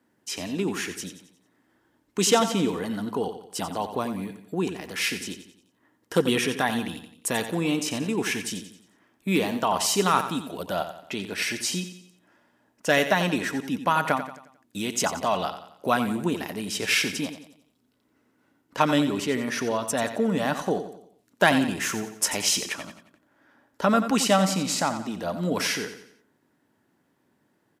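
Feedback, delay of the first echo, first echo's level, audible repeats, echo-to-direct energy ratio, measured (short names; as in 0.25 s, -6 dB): 43%, 89 ms, -10.5 dB, 4, -9.5 dB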